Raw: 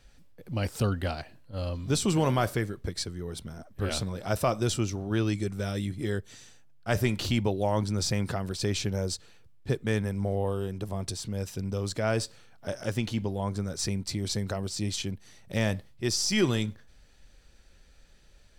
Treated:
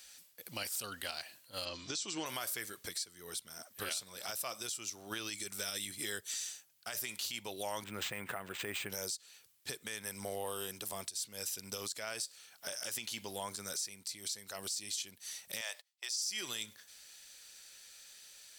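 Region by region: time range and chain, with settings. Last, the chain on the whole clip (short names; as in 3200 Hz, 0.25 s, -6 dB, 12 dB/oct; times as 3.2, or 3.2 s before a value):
1.65–2.26 steep low-pass 7000 Hz + bell 320 Hz +9.5 dB 0.26 oct
7.84–8.9 Butterworth band-stop 4700 Hz, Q 0.72 + decimation joined by straight lines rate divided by 4×
15.61–16.22 gate -41 dBFS, range -23 dB + HPF 560 Hz 24 dB/oct + bell 12000 Hz -12.5 dB 0.39 oct
whole clip: differentiator; compressor 6:1, threshold -50 dBFS; limiter -42.5 dBFS; gain +15.5 dB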